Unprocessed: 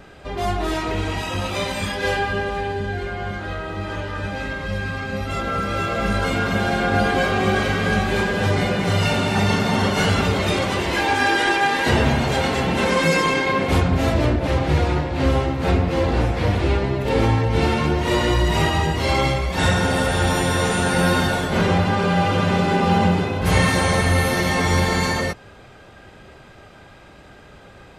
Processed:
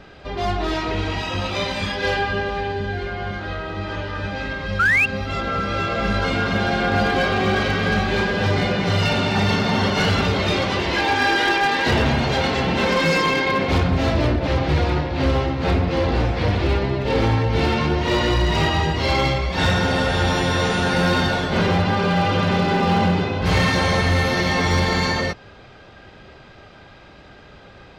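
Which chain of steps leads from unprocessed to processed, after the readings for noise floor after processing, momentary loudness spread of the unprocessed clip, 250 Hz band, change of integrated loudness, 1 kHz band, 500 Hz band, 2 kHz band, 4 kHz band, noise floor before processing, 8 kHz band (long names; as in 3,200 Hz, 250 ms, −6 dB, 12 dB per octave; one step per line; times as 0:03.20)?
−45 dBFS, 8 LU, −0.5 dB, 0.0 dB, 0.0 dB, −0.5 dB, +1.0 dB, +2.0 dB, −45 dBFS, −5.0 dB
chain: high shelf with overshoot 6,800 Hz −11.5 dB, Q 1.5
sound drawn into the spectrogram rise, 0:04.79–0:05.06, 1,300–2,800 Hz −16 dBFS
gain into a clipping stage and back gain 12.5 dB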